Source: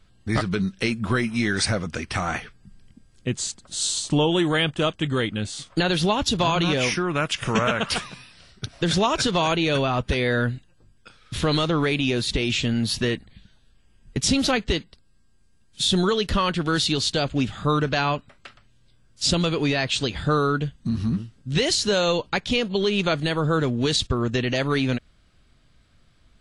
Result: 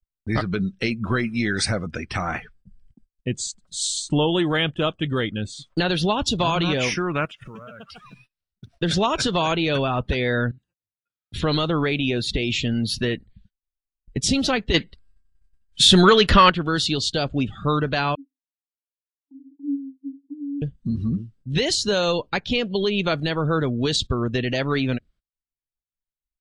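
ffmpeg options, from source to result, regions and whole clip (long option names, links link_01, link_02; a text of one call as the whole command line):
ffmpeg -i in.wav -filter_complex "[0:a]asettb=1/sr,asplit=3[link_01][link_02][link_03];[link_01]atrim=end=7.254[link_04];[link_02]atrim=start=7.25:end=8.77,asetpts=PTS-STARTPTS,afade=type=in:duration=0.004:curve=qsin,afade=type=out:start_time=1.516:duration=0.004:curve=qsin,acompressor=threshold=-35dB:ratio=8:attack=3.2:release=140:knee=1:detection=peak,acrusher=bits=5:mode=log:mix=0:aa=0.000001[link_05];[link_03]atrim=start=8.766[link_06];[link_04][link_05]acrossfade=duration=0.004:curve1=hsin:curve2=qsin[link_07];[link_07][link_06]acrossfade=duration=0.004:curve1=qsin:curve2=hsin,asettb=1/sr,asplit=3[link_08][link_09][link_10];[link_08]atrim=end=10.514[link_11];[link_09]atrim=start=10.51:end=11.34,asetpts=PTS-STARTPTS,afade=type=in:duration=0.004:curve=qsin,afade=type=out:start_time=0.826:duration=0.004:curve=qsin,highpass=55,acompressor=threshold=-43dB:ratio=8:attack=3.2:release=140:knee=1:detection=peak[link_12];[link_10]atrim=start=11.336[link_13];[link_11][link_12]acrossfade=duration=0.004:curve1=hsin:curve2=qsin[link_14];[link_14][link_13]acrossfade=duration=0.004:curve1=qsin:curve2=hsin,asettb=1/sr,asplit=3[link_15][link_16][link_17];[link_15]atrim=end=14.744[link_18];[link_16]atrim=start=14.74:end=16.5,asetpts=PTS-STARTPTS,afade=type=in:duration=0.004:curve=qsin,afade=type=out:start_time=1.756:duration=0.004:curve=qsin,equalizer=frequency=1600:width=0.7:gain=6,acontrast=77[link_19];[link_17]atrim=start=16.496[link_20];[link_18][link_19]acrossfade=duration=0.004:curve1=hsin:curve2=qsin[link_21];[link_21][link_20]acrossfade=duration=0.004:curve1=qsin:curve2=hsin,asettb=1/sr,asplit=3[link_22][link_23][link_24];[link_22]atrim=end=18.154[link_25];[link_23]atrim=start=18.15:end=20.62,asetpts=PTS-STARTPTS,afade=type=in:duration=0.004:curve=qsin,afade=type=out:start_time=2.466:duration=0.004:curve=qsin,asuperpass=centerf=280:order=12:qfactor=7.7,asplit=2[link_26][link_27];[link_27]adelay=22,volume=-11dB[link_28];[link_26][link_28]amix=inputs=2:normalize=0,atrim=end_sample=108927[link_29];[link_24]atrim=start=20.616[link_30];[link_25][link_29]acrossfade=duration=0.004:curve1=hsin:curve2=qsin[link_31];[link_31][link_30]acrossfade=duration=0.004:curve1=qsin:curve2=hsin,afftdn=noise_reduction=19:noise_floor=-36,agate=range=-27dB:threshold=-52dB:ratio=16:detection=peak" out.wav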